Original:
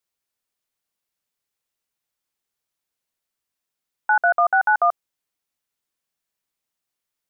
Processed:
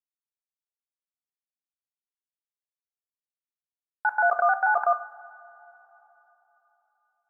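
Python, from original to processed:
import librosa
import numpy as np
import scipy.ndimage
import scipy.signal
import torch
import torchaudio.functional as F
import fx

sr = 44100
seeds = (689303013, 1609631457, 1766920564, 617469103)

y = fx.local_reverse(x, sr, ms=88.0)
y = fx.quant_dither(y, sr, seeds[0], bits=10, dither='none')
y = fx.rev_double_slope(y, sr, seeds[1], early_s=0.6, late_s=3.9, knee_db=-18, drr_db=8.0)
y = y * 10.0 ** (-4.5 / 20.0)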